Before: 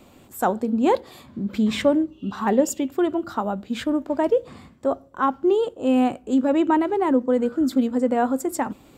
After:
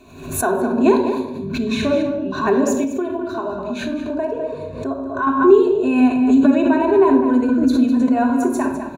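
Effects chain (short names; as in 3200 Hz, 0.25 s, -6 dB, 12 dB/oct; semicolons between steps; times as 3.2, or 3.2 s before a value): ripple EQ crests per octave 1.5, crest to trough 15 dB; outdoor echo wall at 35 m, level -8 dB; shoebox room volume 2600 m³, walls furnished, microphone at 3.4 m; 2.84–5.27 compressor 2.5:1, threshold -20 dBFS, peak gain reduction 7.5 dB; high shelf 10000 Hz -4.5 dB; backwards sustainer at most 79 dB/s; gain -2 dB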